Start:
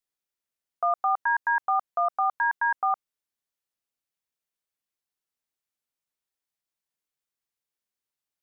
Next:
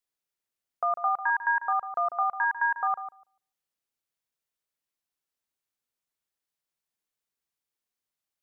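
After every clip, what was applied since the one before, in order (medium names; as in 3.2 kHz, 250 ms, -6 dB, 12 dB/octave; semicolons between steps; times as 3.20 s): dynamic bell 620 Hz, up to -4 dB, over -35 dBFS, Q 0.94; on a send: filtered feedback delay 146 ms, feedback 16%, low-pass 1 kHz, level -8 dB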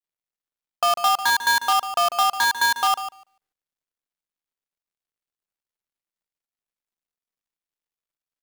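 dead-time distortion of 0.16 ms; trim +8 dB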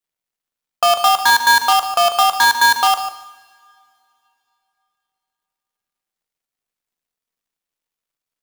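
two-slope reverb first 0.91 s, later 3.2 s, from -22 dB, DRR 9.5 dB; trim +6 dB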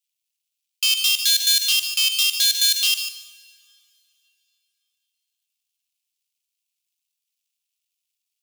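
Chebyshev high-pass 2.6 kHz, order 4; in parallel at 0 dB: peak limiter -17 dBFS, peak gain reduction 11.5 dB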